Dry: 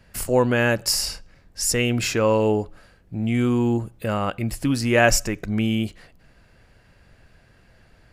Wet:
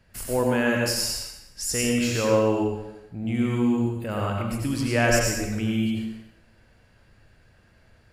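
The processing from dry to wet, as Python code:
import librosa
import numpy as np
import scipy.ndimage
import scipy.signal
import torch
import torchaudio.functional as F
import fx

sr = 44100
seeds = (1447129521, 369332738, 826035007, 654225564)

y = fx.rev_plate(x, sr, seeds[0], rt60_s=0.84, hf_ratio=0.95, predelay_ms=75, drr_db=-1.0)
y = y * librosa.db_to_amplitude(-6.5)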